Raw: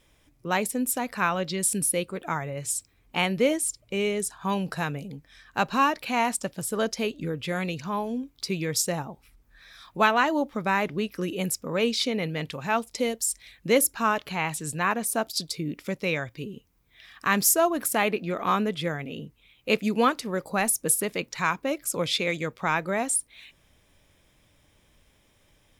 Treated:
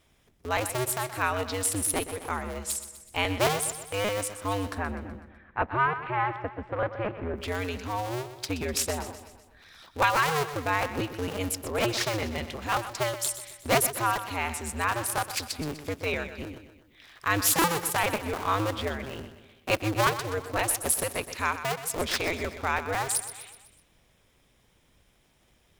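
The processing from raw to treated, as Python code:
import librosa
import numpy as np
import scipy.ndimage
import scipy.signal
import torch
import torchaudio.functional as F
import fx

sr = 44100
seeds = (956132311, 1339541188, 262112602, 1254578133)

y = fx.cycle_switch(x, sr, every=2, mode='inverted')
y = fx.lowpass(y, sr, hz=2100.0, slope=24, at=(4.75, 7.36))
y = fx.echo_feedback(y, sr, ms=125, feedback_pct=52, wet_db=-12)
y = F.gain(torch.from_numpy(y), -2.5).numpy()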